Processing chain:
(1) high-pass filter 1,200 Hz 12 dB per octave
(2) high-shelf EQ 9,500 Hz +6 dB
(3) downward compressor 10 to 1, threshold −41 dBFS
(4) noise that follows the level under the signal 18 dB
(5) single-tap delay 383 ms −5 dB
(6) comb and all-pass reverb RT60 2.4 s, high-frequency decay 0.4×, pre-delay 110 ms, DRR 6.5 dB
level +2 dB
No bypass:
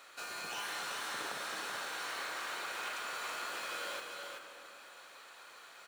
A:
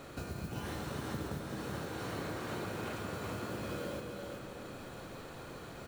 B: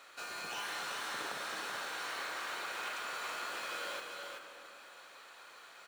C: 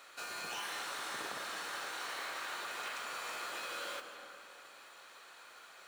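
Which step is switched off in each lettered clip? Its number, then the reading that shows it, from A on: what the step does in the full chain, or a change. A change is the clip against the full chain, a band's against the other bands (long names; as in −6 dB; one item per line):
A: 1, 250 Hz band +22.5 dB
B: 2, 8 kHz band −2.0 dB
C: 5, echo-to-direct ratio −2.0 dB to −6.5 dB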